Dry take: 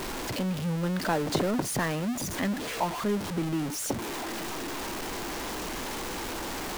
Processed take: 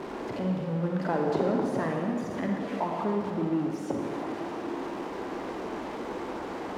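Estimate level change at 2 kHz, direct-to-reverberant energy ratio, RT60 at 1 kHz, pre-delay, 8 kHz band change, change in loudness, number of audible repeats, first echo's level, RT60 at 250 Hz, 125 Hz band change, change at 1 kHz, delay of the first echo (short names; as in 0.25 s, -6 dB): -5.5 dB, 1.0 dB, 2.2 s, 36 ms, under -15 dB, -0.5 dB, none, none, 2.2 s, -1.5 dB, 0.0 dB, none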